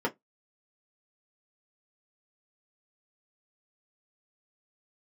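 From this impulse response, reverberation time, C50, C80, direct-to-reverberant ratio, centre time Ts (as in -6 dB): 0.15 s, 24.5 dB, 38.0 dB, -2.5 dB, 8 ms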